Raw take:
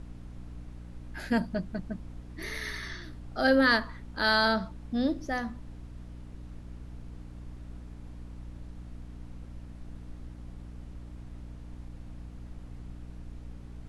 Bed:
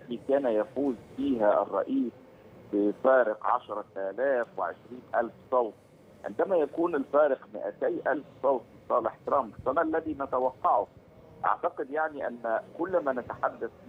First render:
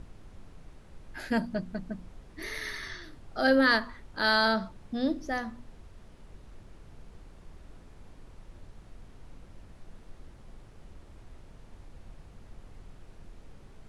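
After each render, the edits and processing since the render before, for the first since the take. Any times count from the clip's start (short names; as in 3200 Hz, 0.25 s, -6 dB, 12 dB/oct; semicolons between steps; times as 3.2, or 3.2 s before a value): notches 60/120/180/240/300 Hz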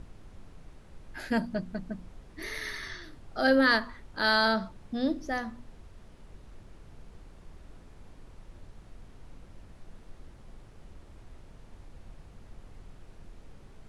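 nothing audible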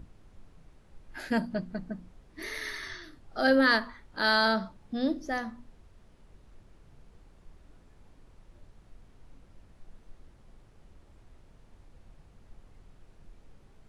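noise print and reduce 6 dB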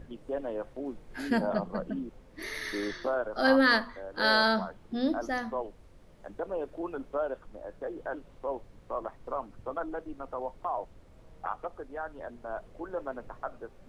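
add bed -8.5 dB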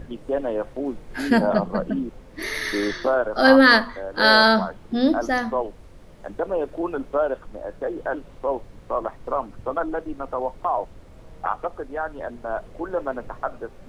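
gain +9.5 dB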